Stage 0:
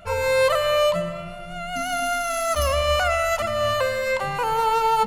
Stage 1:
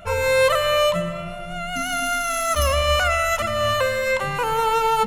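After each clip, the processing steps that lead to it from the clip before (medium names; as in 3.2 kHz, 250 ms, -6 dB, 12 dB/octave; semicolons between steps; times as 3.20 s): dynamic bell 750 Hz, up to -7 dB, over -36 dBFS, Q 2.2; band-stop 4.6 kHz, Q 7.9; trim +3.5 dB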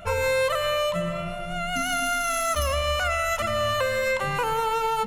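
compression, threshold -21 dBFS, peak gain reduction 7 dB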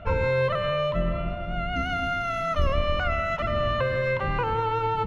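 octave divider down 2 oct, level +4 dB; distance through air 300 m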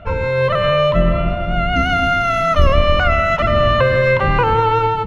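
level rider gain up to 7.5 dB; trim +4 dB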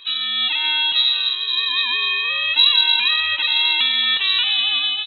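speakerphone echo 360 ms, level -16 dB; frequency inversion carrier 3.9 kHz; trim -5 dB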